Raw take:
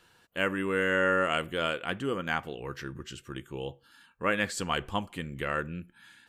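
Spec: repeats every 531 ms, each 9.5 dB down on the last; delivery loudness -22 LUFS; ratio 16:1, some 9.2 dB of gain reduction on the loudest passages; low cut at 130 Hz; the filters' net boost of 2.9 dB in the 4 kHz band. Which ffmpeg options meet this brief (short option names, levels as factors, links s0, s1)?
-af "highpass=130,equalizer=f=4000:t=o:g=4.5,acompressor=threshold=0.0316:ratio=16,aecho=1:1:531|1062|1593|2124:0.335|0.111|0.0365|0.012,volume=5.31"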